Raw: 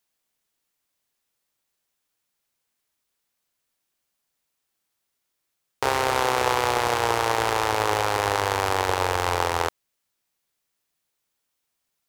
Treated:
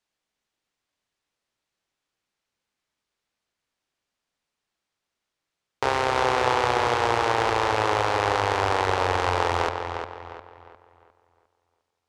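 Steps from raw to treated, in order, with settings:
high-frequency loss of the air 79 metres
feedback echo with a low-pass in the loop 354 ms, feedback 38%, low-pass 4,000 Hz, level −6.5 dB

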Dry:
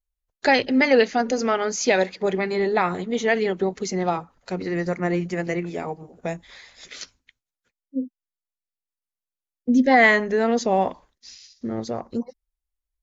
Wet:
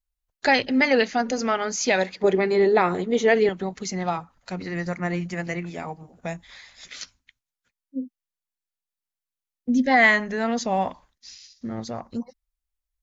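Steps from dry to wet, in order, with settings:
parametric band 410 Hz −5 dB 1 octave, from 0:02.24 +4.5 dB, from 0:03.49 −9 dB

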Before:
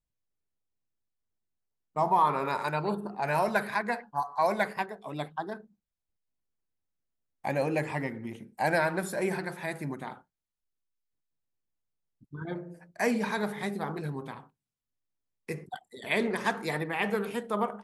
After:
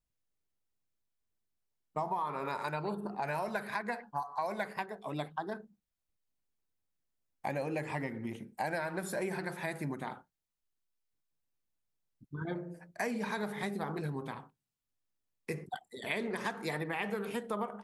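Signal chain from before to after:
downward compressor, threshold −32 dBFS, peak gain reduction 12.5 dB

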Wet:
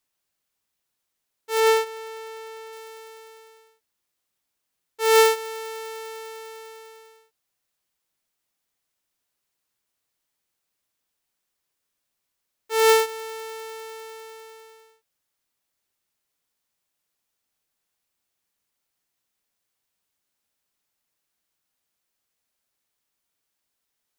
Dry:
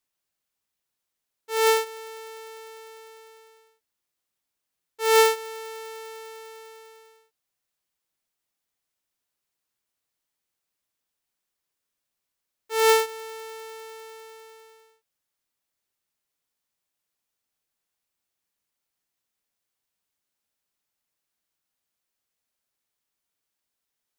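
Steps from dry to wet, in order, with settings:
0:01.60–0:02.73: high-shelf EQ 5,000 Hz −6.5 dB
in parallel at −6.5 dB: hard clipping −22.5 dBFS, distortion −7 dB

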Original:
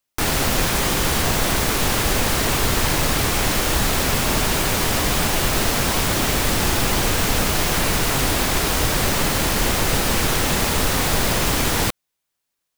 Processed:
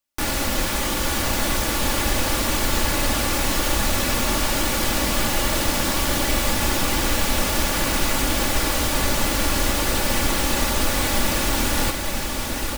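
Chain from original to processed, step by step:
comb filter 3.5 ms, depth 50%
feedback delay with all-pass diffusion 964 ms, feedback 68%, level −6 dB
level −4.5 dB

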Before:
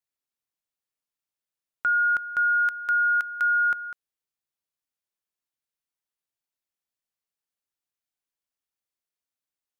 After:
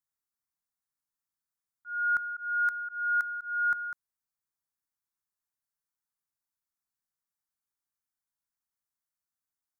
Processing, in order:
volume swells 402 ms
phaser with its sweep stopped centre 1,200 Hz, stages 4

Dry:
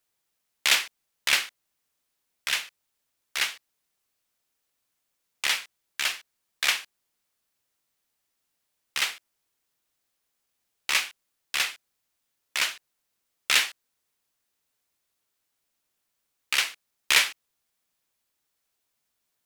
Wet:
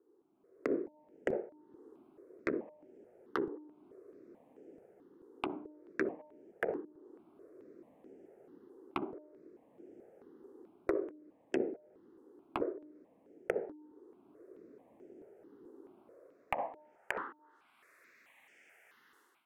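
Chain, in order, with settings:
parametric band 320 Hz +15 dB 1.9 octaves
soft clipping −12.5 dBFS, distortion −16 dB
hum removal 302.2 Hz, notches 3
treble cut that deepens with the level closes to 510 Hz, closed at −26 dBFS
automatic gain control gain up to 16 dB
band-pass filter sweep 380 Hz → 2,100 Hz, 0:15.81–0:17.86
downward compressor 4 to 1, threshold −48 dBFS, peak gain reduction 20 dB
parametric band 4,400 Hz −13 dB 1.8 octaves
step-sequenced phaser 4.6 Hz 640–4,000 Hz
level +17.5 dB

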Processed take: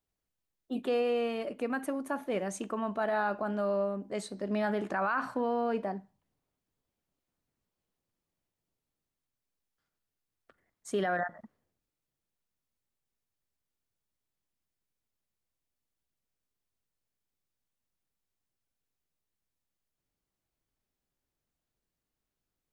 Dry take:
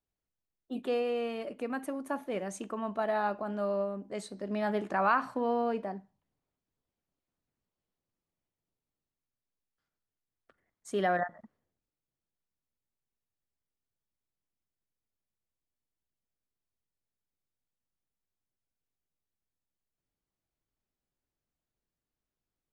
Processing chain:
dynamic equaliser 1,500 Hz, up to +6 dB, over −50 dBFS, Q 5.5
brickwall limiter −24 dBFS, peak gain reduction 10.5 dB
level +2.5 dB

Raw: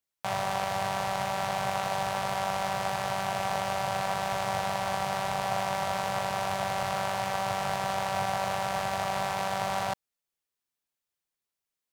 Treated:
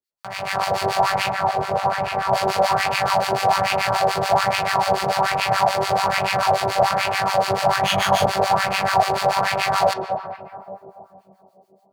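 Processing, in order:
parametric band 4,500 Hz +9 dB 0.23 octaves
0:07.80–0:08.26: flutter between parallel walls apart 3.6 metres, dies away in 0.52 s
convolution reverb RT60 2.5 s, pre-delay 5 ms, DRR 11.5 dB
automatic gain control gain up to 15 dB
tape delay 212 ms, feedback 76%, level −5.5 dB, low-pass 1,100 Hz
two-band tremolo in antiphase 6.9 Hz, depth 100%, crossover 1,100 Hz
0:01.31–0:02.33: high-shelf EQ 2,100 Hz −10.5 dB
auto-filter bell 1.2 Hz 360–2,600 Hz +10 dB
level −1 dB

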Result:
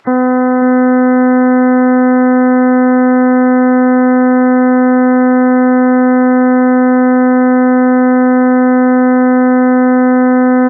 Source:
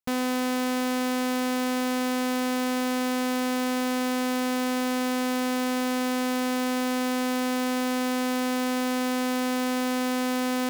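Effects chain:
stylus tracing distortion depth 0.045 ms
high-pass filter 240 Hz 6 dB per octave
gate on every frequency bin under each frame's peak −15 dB strong
Bessel low-pass filter 1,400 Hz, order 2
upward compression, threshold −50 dBFS
on a send: repeating echo 546 ms, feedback 33%, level −11 dB
on the sum: boost into a limiter +22 dB
level −1 dB

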